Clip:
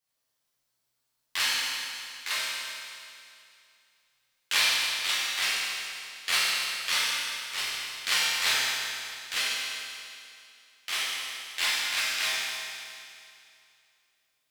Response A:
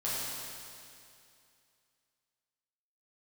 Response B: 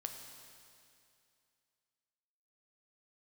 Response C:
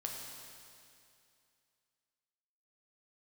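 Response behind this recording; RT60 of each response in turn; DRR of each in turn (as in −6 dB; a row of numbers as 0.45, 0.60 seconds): A; 2.5, 2.5, 2.5 seconds; −9.0, 4.0, −0.5 decibels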